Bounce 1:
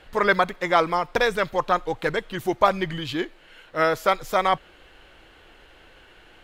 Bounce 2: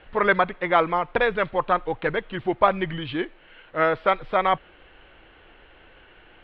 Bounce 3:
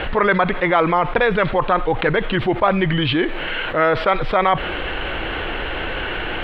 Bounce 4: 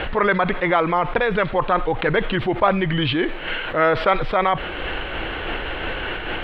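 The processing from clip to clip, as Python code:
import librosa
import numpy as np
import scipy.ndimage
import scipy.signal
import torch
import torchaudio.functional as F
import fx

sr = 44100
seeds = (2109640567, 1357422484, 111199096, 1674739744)

y1 = scipy.signal.sosfilt(scipy.signal.cheby2(4, 40, 6200.0, 'lowpass', fs=sr, output='sos'), x)
y2 = fx.env_flatten(y1, sr, amount_pct=70)
y3 = fx.am_noise(y2, sr, seeds[0], hz=5.7, depth_pct=55)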